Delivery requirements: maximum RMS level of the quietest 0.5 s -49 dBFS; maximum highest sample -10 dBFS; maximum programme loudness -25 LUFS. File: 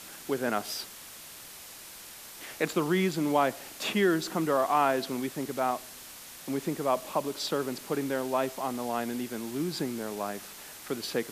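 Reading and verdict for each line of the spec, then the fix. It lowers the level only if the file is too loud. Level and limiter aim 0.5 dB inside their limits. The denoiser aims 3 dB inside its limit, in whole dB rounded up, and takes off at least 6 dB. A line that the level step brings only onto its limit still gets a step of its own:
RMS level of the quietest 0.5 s -47 dBFS: fail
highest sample -12.0 dBFS: OK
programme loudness -30.5 LUFS: OK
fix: denoiser 6 dB, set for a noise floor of -47 dBFS

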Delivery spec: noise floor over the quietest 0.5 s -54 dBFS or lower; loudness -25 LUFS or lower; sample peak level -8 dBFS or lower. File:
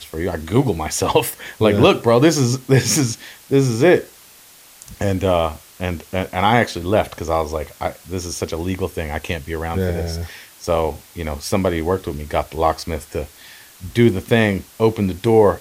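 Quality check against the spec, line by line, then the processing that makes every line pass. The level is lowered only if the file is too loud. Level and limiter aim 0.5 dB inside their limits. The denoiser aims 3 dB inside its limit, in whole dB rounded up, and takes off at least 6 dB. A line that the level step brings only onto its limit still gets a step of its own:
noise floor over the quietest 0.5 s -46 dBFS: fail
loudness -19.5 LUFS: fail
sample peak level -1.5 dBFS: fail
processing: denoiser 6 dB, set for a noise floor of -46 dBFS; gain -6 dB; limiter -8.5 dBFS

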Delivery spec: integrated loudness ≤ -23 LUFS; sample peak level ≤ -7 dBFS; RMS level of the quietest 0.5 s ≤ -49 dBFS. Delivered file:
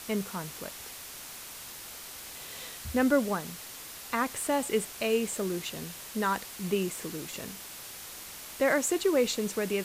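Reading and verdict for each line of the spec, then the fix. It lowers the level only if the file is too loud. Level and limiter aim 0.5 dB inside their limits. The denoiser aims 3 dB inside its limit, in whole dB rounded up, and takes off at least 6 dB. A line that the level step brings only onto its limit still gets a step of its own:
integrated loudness -32.0 LUFS: OK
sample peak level -12.5 dBFS: OK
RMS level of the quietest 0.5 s -44 dBFS: fail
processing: denoiser 8 dB, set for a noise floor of -44 dBFS

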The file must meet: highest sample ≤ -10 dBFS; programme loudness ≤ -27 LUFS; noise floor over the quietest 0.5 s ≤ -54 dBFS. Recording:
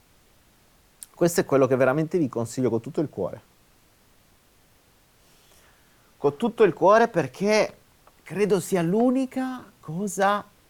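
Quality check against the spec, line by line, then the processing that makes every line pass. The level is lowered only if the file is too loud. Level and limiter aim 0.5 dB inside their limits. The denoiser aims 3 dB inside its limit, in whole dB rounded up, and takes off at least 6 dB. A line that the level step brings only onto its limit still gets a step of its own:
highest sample -5.5 dBFS: fail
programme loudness -23.5 LUFS: fail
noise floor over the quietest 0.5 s -59 dBFS: OK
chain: gain -4 dB; limiter -10.5 dBFS

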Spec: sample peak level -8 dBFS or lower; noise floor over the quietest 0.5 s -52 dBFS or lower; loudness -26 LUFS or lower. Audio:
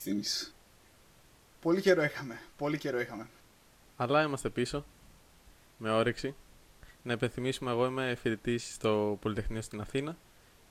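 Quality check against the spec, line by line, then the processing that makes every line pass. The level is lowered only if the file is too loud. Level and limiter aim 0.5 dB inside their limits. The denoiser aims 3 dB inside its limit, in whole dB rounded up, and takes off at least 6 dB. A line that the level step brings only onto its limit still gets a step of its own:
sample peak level -12.0 dBFS: OK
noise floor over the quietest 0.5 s -61 dBFS: OK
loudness -33.0 LUFS: OK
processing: none

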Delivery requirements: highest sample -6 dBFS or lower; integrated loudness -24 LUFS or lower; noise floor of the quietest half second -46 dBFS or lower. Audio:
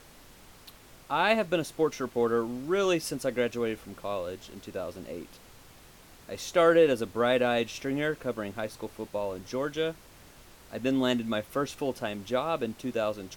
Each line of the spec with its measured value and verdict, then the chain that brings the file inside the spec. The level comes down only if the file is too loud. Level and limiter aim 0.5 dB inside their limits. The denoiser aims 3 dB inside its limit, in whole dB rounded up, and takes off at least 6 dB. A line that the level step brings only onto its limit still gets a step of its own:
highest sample -11.0 dBFS: OK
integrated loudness -29.0 LUFS: OK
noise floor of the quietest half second -53 dBFS: OK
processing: none

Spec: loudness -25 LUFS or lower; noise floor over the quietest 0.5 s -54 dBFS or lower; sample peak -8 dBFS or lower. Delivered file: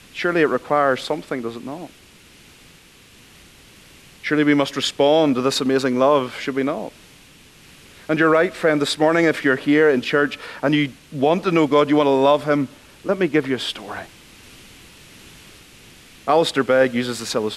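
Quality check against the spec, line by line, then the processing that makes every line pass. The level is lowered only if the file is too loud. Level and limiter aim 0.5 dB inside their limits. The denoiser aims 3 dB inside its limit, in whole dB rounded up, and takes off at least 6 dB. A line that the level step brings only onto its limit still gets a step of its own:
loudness -19.0 LUFS: fail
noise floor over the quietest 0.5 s -48 dBFS: fail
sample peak -5.5 dBFS: fail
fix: gain -6.5 dB

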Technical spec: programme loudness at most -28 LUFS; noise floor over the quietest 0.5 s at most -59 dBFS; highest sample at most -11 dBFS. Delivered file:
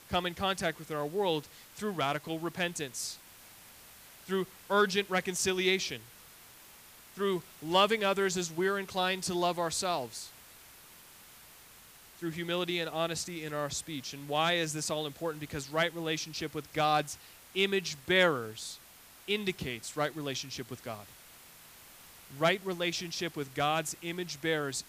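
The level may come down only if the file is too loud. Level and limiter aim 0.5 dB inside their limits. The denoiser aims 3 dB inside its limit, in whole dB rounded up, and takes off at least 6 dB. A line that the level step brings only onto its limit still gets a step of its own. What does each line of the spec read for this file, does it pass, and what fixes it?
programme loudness -32.0 LUFS: OK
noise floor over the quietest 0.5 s -55 dBFS: fail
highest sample -14.5 dBFS: OK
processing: denoiser 7 dB, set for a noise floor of -55 dBFS

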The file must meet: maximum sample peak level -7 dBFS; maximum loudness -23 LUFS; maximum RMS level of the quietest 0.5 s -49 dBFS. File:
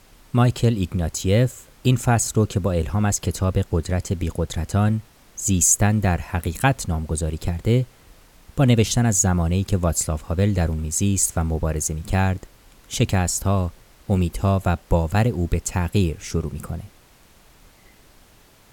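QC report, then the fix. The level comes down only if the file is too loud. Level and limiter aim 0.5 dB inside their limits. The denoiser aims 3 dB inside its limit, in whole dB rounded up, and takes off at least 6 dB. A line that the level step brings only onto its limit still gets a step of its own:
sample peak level -4.0 dBFS: fail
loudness -21.5 LUFS: fail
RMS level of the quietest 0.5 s -52 dBFS: OK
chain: gain -2 dB; limiter -7.5 dBFS

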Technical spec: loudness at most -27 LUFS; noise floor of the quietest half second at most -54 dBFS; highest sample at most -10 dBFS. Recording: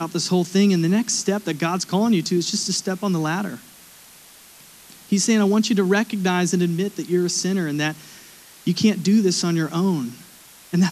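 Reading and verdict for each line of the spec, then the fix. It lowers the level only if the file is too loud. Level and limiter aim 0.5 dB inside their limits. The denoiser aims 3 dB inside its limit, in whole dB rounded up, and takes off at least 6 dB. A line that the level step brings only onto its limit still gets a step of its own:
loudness -21.0 LUFS: fail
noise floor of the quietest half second -47 dBFS: fail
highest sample -6.5 dBFS: fail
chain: denoiser 6 dB, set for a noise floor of -47 dBFS; gain -6.5 dB

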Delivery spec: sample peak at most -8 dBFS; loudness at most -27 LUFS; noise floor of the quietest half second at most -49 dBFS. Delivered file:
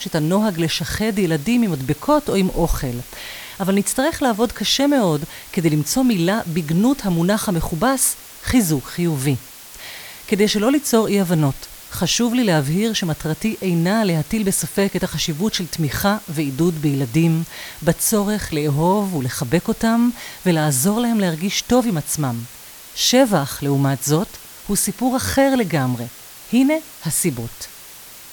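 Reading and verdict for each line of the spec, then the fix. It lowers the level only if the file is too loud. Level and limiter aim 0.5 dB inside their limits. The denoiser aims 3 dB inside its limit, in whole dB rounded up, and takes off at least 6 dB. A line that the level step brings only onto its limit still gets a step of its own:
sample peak -3.5 dBFS: fail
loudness -19.0 LUFS: fail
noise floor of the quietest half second -40 dBFS: fail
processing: denoiser 6 dB, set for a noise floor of -40 dBFS; gain -8.5 dB

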